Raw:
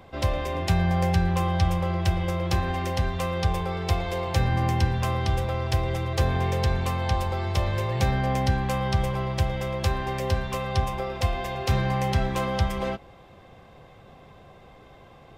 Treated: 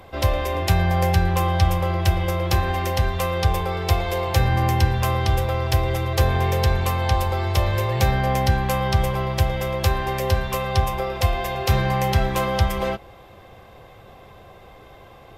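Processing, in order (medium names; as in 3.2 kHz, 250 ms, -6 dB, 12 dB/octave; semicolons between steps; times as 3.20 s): graphic EQ with 31 bands 160 Hz -8 dB, 250 Hz -6 dB, 12.5 kHz +11 dB; trim +5 dB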